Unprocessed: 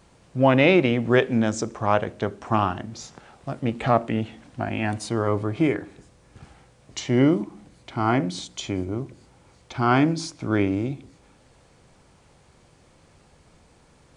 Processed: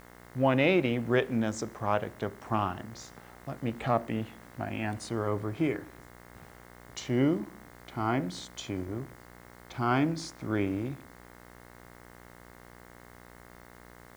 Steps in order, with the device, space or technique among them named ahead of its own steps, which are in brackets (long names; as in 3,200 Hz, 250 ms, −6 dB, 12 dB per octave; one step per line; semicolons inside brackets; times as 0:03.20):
video cassette with head-switching buzz (hum with harmonics 60 Hz, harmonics 36, −45 dBFS −2 dB per octave; white noise bed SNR 31 dB)
level −7.5 dB